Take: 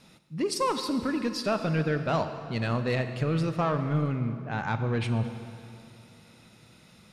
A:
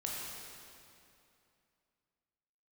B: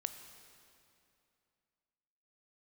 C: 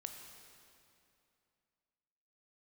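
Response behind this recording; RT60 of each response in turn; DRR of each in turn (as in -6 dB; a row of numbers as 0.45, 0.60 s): B; 2.7, 2.6, 2.7 s; -4.0, 8.0, 4.0 dB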